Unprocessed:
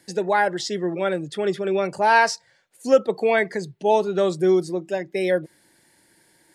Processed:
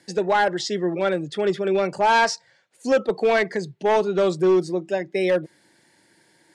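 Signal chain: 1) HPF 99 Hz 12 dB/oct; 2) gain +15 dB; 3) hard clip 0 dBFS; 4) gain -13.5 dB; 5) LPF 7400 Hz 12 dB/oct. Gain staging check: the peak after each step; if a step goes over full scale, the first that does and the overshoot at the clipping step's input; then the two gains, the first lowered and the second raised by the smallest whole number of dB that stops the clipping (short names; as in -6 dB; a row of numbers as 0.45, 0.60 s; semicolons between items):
-5.0, +10.0, 0.0, -13.5, -13.0 dBFS; step 2, 10.0 dB; step 2 +5 dB, step 4 -3.5 dB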